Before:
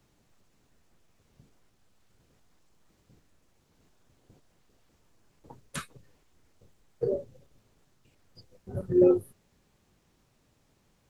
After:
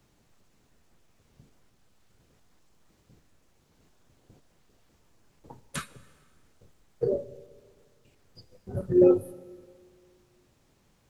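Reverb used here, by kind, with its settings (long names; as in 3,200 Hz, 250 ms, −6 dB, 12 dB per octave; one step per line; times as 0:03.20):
dense smooth reverb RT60 1.9 s, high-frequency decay 0.9×, DRR 16.5 dB
level +2 dB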